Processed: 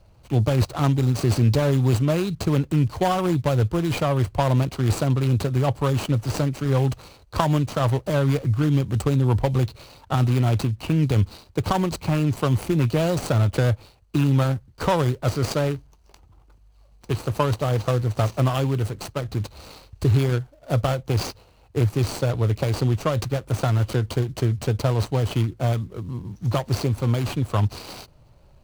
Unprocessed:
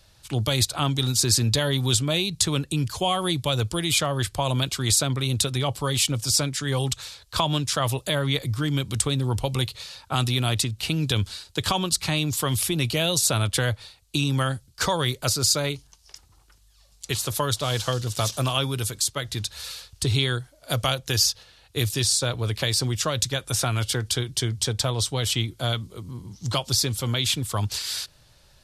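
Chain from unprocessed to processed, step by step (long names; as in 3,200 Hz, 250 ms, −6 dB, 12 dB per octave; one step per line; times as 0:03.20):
running median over 25 samples
level +5.5 dB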